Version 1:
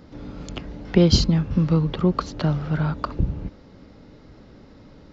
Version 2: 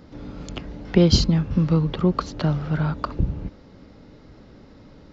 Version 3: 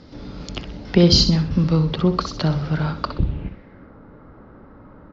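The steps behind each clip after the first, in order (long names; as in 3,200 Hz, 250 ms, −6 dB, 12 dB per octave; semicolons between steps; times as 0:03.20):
no processing that can be heard
repeating echo 63 ms, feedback 36%, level −10 dB; low-pass filter sweep 5,100 Hz → 1,300 Hz, 0:03.01–0:03.94; boost into a limiter +2.5 dB; level −1 dB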